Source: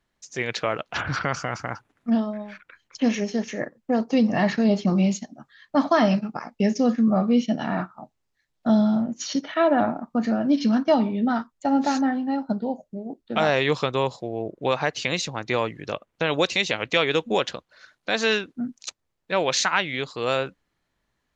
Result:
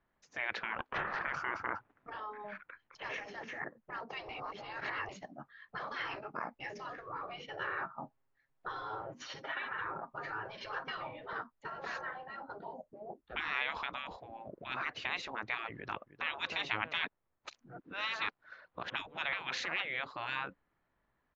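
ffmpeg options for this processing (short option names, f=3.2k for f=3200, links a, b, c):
-filter_complex "[0:a]asettb=1/sr,asplit=3[a][b][c];[a]atrim=end=0.784[d];[b]atrim=start=0.78:end=1.31,asetpts=PTS-STARTPTS,afade=t=in:d=0.004:c=qsin,afade=t=out:st=0.526:d=0.004:c=qsin,aeval=exprs='val(0)*sin(2*PI*260*n/s)':c=same[e];[c]atrim=start=1.306[f];[d][e]acrossfade=d=0.004:c1=hsin:c2=qsin[g];[g][f]acrossfade=d=0.004:c1=qsin:c2=hsin,asettb=1/sr,asplit=3[h][i][j];[h]atrim=end=7.474[k];[i]atrim=start=7.47:end=11.33,asetpts=PTS-STARTPTS,afade=t=in:d=0.004:c=qsin,afade=t=out:st=3.856:d=0.004:c=qsin,aecho=1:1:7.4:0.65,atrim=end_sample=170226[l];[j]atrim=start=11.326[m];[k][l]acrossfade=d=0.004:c1=hsin:c2=qsin[n];[n][m]acrossfade=d=0.004:c1=qsin:c2=hsin,asettb=1/sr,asplit=3[o][p][q];[o]atrim=end=13.214[r];[p]atrim=start=13.21:end=14.18,asetpts=PTS-STARTPTS,afade=t=in:d=0.004:c=qsin,afade=t=out:st=0.966:d=0.004:c=qsin,afreqshift=-65[s];[q]atrim=start=14.176[t];[r][s]acrossfade=d=0.004:c1=hsin:c2=qsin[u];[u][t]acrossfade=d=0.004:c1=qsin:c2=hsin,asplit=2[v][w];[w]afade=t=in:st=15.75:d=0.01,afade=t=out:st=16.37:d=0.01,aecho=0:1:310|620|930:0.125893|0.050357|0.0201428[x];[v][x]amix=inputs=2:normalize=0,asplit=5[y][z][aa][ab][ac];[y]atrim=end=4.292[ad];[z]atrim=start=4.288:end=5.092,asetpts=PTS-STARTPTS,areverse[ae];[aa]atrim=start=5.088:end=17.042[af];[ab]atrim=start=17.038:end=19.332,asetpts=PTS-STARTPTS,areverse[ag];[ac]atrim=start=19.328[ah];[ad][ae]acrossfade=d=0.004:c1=hsin:c2=hsin[ai];[ai][af]acrossfade=d=0.004:c1=hsin:c2=hsin[aj];[aj][ag]acrossfade=d=0.004:c1=hsin:c2=hsin[ak];[ak][ah]acrossfade=d=0.004:c1=hsin:c2=hsin,lowpass=1.3k,afftfilt=real='re*lt(hypot(re,im),0.0794)':imag='im*lt(hypot(re,im),0.0794)':win_size=1024:overlap=0.75,tiltshelf=f=810:g=-5"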